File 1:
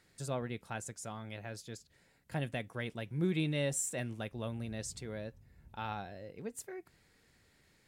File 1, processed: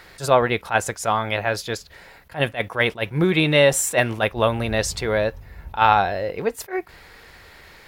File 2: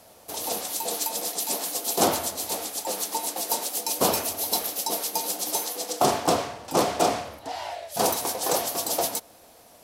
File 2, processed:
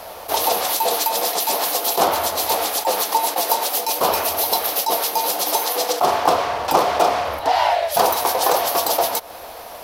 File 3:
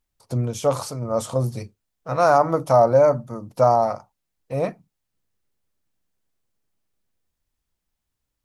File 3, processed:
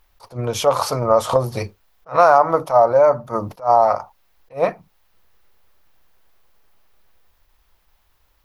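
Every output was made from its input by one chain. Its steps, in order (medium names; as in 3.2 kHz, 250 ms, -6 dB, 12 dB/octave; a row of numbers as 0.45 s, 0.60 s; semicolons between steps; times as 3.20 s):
compression 5:1, threshold -32 dBFS; ten-band graphic EQ 125 Hz -9 dB, 250 Hz -9 dB, 1 kHz +4 dB, 8 kHz -11 dB; attacks held to a fixed rise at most 270 dB/s; peak normalisation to -1.5 dBFS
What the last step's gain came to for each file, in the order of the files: +24.0 dB, +18.0 dB, +20.0 dB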